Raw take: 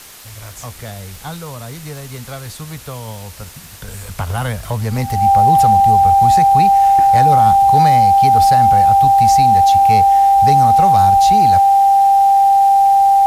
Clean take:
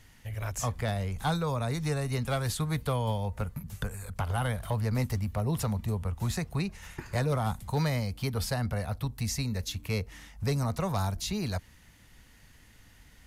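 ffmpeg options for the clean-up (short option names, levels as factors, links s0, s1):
-af "adeclick=t=4,bandreject=f=790:w=30,afwtdn=0.014,asetnsamples=n=441:p=0,asendcmd='3.88 volume volume -9.5dB',volume=1"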